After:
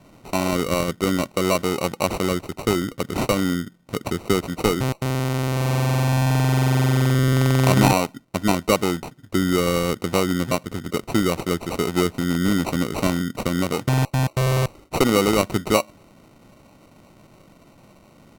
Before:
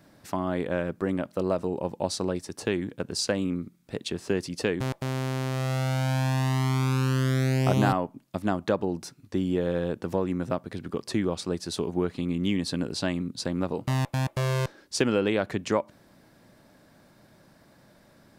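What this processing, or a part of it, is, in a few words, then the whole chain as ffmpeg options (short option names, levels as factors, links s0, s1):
crushed at another speed: -af "asetrate=55125,aresample=44100,acrusher=samples=21:mix=1:aa=0.000001,asetrate=35280,aresample=44100,volume=2.11"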